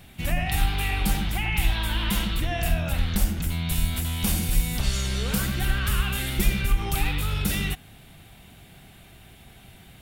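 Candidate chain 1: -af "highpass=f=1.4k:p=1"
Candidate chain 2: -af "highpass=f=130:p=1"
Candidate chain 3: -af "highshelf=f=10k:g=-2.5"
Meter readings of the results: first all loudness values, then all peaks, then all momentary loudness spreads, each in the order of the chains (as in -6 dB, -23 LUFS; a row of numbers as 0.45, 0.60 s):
-31.0, -28.5, -26.5 LUFS; -14.0, -12.0, -8.0 dBFS; 4, 3, 2 LU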